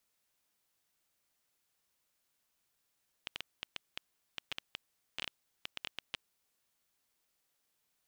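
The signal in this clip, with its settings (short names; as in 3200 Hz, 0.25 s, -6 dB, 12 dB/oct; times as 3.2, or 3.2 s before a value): random clicks 7.4/s -20.5 dBFS 3.29 s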